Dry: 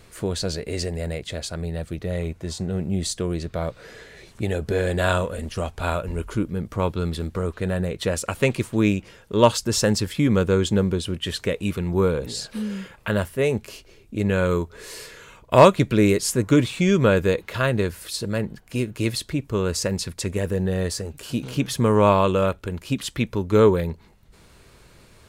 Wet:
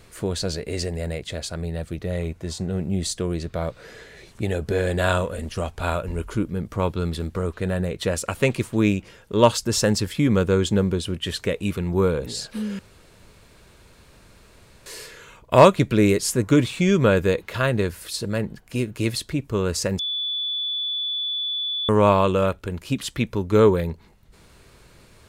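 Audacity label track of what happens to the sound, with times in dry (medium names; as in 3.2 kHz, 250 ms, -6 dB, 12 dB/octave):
12.790000	14.860000	room tone
19.990000	21.890000	bleep 3.46 kHz -23.5 dBFS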